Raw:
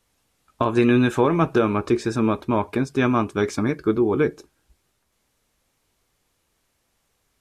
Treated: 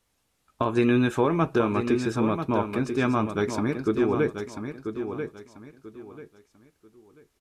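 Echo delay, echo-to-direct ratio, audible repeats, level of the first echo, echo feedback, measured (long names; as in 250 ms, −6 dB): 989 ms, −7.5 dB, 3, −8.0 dB, 27%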